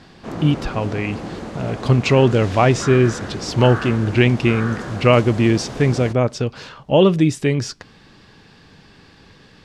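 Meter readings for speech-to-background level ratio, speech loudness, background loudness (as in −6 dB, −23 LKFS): 12.0 dB, −18.0 LKFS, −30.0 LKFS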